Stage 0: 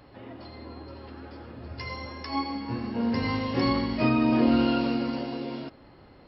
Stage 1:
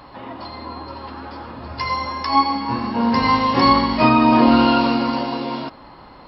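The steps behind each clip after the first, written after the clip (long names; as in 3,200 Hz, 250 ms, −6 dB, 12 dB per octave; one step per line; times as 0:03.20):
graphic EQ with 15 bands 100 Hz −7 dB, 400 Hz −4 dB, 1,000 Hz +11 dB, 4,000 Hz +4 dB
level +8.5 dB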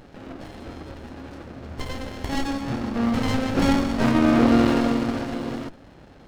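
windowed peak hold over 33 samples
level −2.5 dB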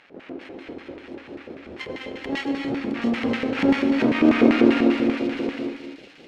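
auto-filter band-pass square 5.1 Hz 390–2,300 Hz
delay with a high-pass on its return 665 ms, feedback 41%, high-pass 3,900 Hz, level −6 dB
reverb whose tail is shaped and stops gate 290 ms rising, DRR 7.5 dB
level +8.5 dB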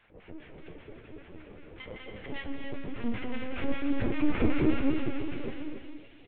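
linear-prediction vocoder at 8 kHz pitch kept
flanger 0.98 Hz, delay 8.4 ms, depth 5.8 ms, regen +46%
single-tap delay 284 ms −8.5 dB
level −5.5 dB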